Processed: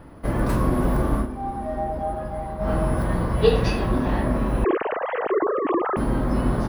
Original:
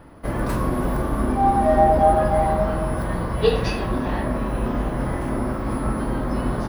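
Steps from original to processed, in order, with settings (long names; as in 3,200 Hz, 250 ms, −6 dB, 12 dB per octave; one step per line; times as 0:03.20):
0:04.64–0:05.97: three sine waves on the formant tracks
low-shelf EQ 470 Hz +3.5 dB
0:01.16–0:02.71: duck −12 dB, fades 0.12 s
level −1 dB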